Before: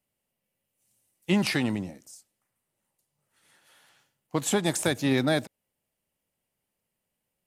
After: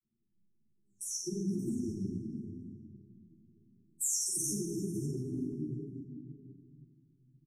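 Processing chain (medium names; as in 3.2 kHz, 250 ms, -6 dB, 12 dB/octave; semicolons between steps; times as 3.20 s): delay that grows with frequency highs early, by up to 449 ms; granulator 100 ms, grains 20 per s, spray 37 ms, pitch spread up and down by 0 st; compression 6:1, threshold -34 dBFS, peak gain reduction 13 dB; FFT band-reject 420–5400 Hz; level-controlled noise filter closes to 330 Hz, open at -39.5 dBFS; doubling 40 ms -7 dB; reverberation RT60 2.0 s, pre-delay 6 ms, DRR -11 dB; peak limiter -24.5 dBFS, peak gain reduction 12.5 dB; tilt shelf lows -3.5 dB, about 1.4 kHz; feedback delay 234 ms, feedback 46%, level -19 dB; three-phase chorus; trim +2 dB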